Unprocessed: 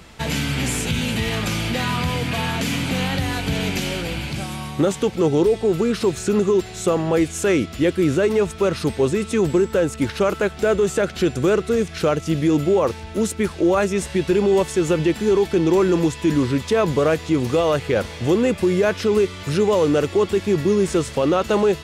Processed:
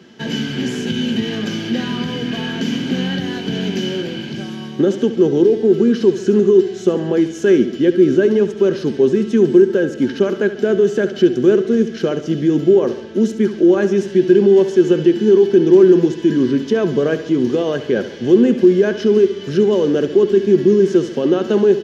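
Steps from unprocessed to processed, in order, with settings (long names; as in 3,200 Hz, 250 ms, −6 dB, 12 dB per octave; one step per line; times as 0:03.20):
high-pass filter 110 Hz 24 dB per octave
high shelf with overshoot 7,200 Hz −6.5 dB, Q 3
hollow resonant body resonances 240/360/1,600/3,000 Hz, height 17 dB, ringing for 40 ms
on a send: repeating echo 70 ms, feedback 53%, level −12.5 dB
on the sum: level −8.5 dB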